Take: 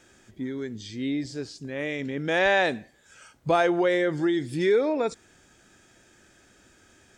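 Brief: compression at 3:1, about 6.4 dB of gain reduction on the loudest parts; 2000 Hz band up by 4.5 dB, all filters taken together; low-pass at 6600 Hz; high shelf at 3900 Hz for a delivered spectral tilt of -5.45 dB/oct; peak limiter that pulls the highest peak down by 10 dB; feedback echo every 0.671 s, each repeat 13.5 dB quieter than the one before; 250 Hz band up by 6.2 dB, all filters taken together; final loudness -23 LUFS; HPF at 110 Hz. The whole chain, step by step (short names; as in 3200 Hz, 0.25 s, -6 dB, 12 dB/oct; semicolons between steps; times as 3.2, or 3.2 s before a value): HPF 110 Hz; LPF 6600 Hz; bell 250 Hz +9 dB; bell 2000 Hz +6 dB; high shelf 3900 Hz -3.5 dB; compressor 3:1, threshold -23 dBFS; limiter -22 dBFS; feedback echo 0.671 s, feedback 21%, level -13.5 dB; gain +7.5 dB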